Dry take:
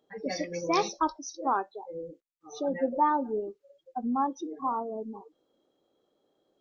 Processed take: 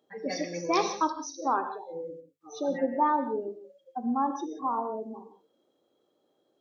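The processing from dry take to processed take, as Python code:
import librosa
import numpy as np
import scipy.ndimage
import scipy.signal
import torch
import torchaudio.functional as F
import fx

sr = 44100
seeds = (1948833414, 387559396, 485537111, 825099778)

y = scipy.signal.sosfilt(scipy.signal.butter(2, 85.0, 'highpass', fs=sr, output='sos'), x)
y = fx.hum_notches(y, sr, base_hz=50, count=4)
y = fx.rev_gated(y, sr, seeds[0], gate_ms=200, shape='flat', drr_db=7.5)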